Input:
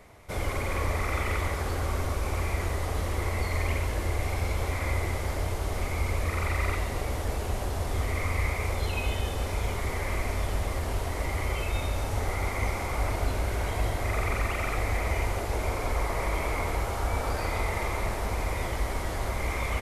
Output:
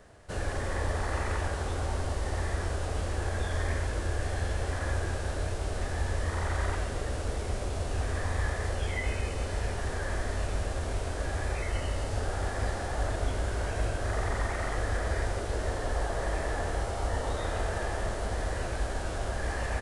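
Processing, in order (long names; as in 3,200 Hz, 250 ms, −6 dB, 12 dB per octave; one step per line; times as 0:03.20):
formants moved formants −4 semitones
level −2 dB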